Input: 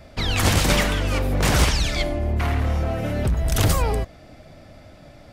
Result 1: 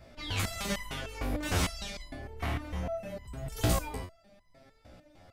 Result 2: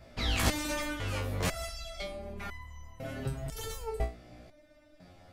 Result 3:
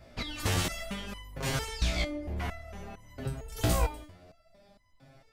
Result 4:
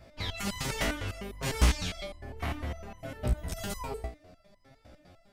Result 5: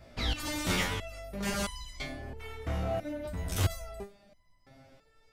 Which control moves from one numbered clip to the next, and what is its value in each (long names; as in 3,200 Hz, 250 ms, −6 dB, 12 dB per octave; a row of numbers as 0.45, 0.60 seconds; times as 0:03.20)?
step-sequenced resonator, speed: 6.6, 2, 4.4, 9.9, 3 Hertz